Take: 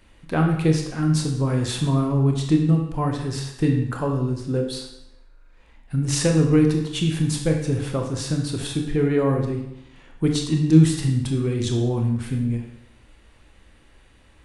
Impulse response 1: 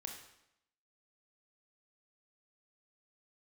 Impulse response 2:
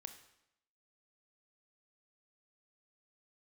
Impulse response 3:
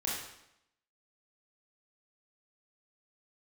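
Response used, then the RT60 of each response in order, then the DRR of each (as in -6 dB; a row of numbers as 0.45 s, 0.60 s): 1; 0.80 s, 0.80 s, 0.80 s; 2.0 dB, 7.5 dB, -5.5 dB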